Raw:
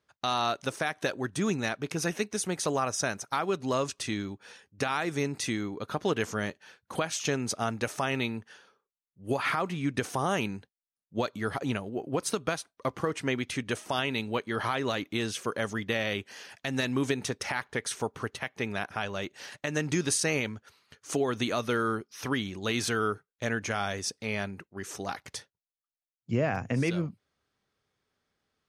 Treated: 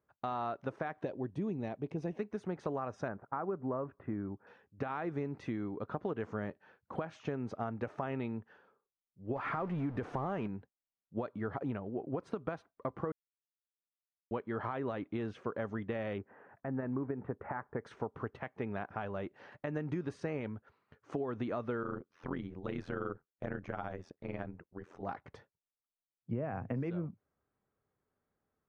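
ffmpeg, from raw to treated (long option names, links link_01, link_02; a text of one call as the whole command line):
ffmpeg -i in.wav -filter_complex "[0:a]asettb=1/sr,asplit=3[link_01][link_02][link_03];[link_01]atrim=end=1.044[link_04];[link_02]atrim=start=1.04:end=2.19,asetpts=PTS-STARTPTS,afade=type=in:duration=0.004:curve=qsin,afade=type=out:start_time=1.146:duration=0.004:curve=qsin,equalizer=frequency=1400:width=1.8:gain=-15[link_05];[link_03]atrim=start=2.186[link_06];[link_04][link_05]acrossfade=duration=0.004:curve1=hsin:curve2=qsin[link_07];[link_07][link_06]acrossfade=duration=0.004:curve1=qsin:curve2=hsin,asettb=1/sr,asplit=3[link_08][link_09][link_10];[link_08]atrim=end=3.084[link_11];[link_09]atrim=start=3.08:end=4.47,asetpts=PTS-STARTPTS,afade=type=in:duration=0.004:curve=qsin,afade=type=out:start_time=1.386:duration=0.004:curve=qsin,lowpass=frequency=1700:width=0.5412,lowpass=frequency=1700:width=1.3066[link_12];[link_10]atrim=start=4.466[link_13];[link_11][link_12]acrossfade=duration=0.004:curve1=hsin:curve2=qsin[link_14];[link_14][link_13]acrossfade=duration=0.004:curve1=qsin:curve2=hsin,asettb=1/sr,asplit=3[link_15][link_16][link_17];[link_15]atrim=end=9.364[link_18];[link_16]atrim=start=9.36:end=10.47,asetpts=PTS-STARTPTS,afade=type=in:duration=0.004:curve=qsin,afade=type=out:start_time=1.106:duration=0.004:curve=qsin,aeval=exprs='val(0)+0.5*0.0251*sgn(val(0))':channel_layout=same[link_19];[link_17]atrim=start=10.466[link_20];[link_18][link_19]acrossfade=duration=0.004:curve1=hsin:curve2=qsin[link_21];[link_21][link_20]acrossfade=duration=0.004:curve1=qsin:curve2=hsin,asettb=1/sr,asplit=3[link_22][link_23][link_24];[link_22]atrim=end=16.184[link_25];[link_23]atrim=start=16.18:end=17.85,asetpts=PTS-STARTPTS,afade=type=in:duration=0.004:curve=qsin,afade=type=out:start_time=1.666:duration=0.004:curve=qsin,lowpass=frequency=1700:width=0.5412,lowpass=frequency=1700:width=1.3066[link_26];[link_24]atrim=start=17.846[link_27];[link_25][link_26]acrossfade=duration=0.004:curve1=hsin:curve2=qsin[link_28];[link_28][link_27]acrossfade=duration=0.004:curve1=qsin:curve2=hsin,asettb=1/sr,asplit=3[link_29][link_30][link_31];[link_29]atrim=end=21.834[link_32];[link_30]atrim=start=21.83:end=25.03,asetpts=PTS-STARTPTS,afade=type=in:duration=0.004:curve=qsin,afade=type=out:start_time=3.196:duration=0.004:curve=qsin,tremolo=f=86:d=0.947[link_33];[link_31]atrim=start=25.026[link_34];[link_32][link_33]acrossfade=duration=0.004:curve1=hsin:curve2=qsin[link_35];[link_35][link_34]acrossfade=duration=0.004:curve1=qsin:curve2=hsin,asplit=3[link_36][link_37][link_38];[link_36]atrim=end=13.12,asetpts=PTS-STARTPTS,afade=type=out:start_time=13.116:duration=0.004:curve=hsin[link_39];[link_37]atrim=start=13.12:end=14.31,asetpts=PTS-STARTPTS,volume=0[link_40];[link_38]atrim=start=14.31,asetpts=PTS-STARTPTS,afade=type=in:duration=0.004:curve=hsin[link_41];[link_39][link_40][link_41]concat=n=3:v=0:a=1,lowpass=1200,acompressor=threshold=-30dB:ratio=6,volume=-2.5dB" out.wav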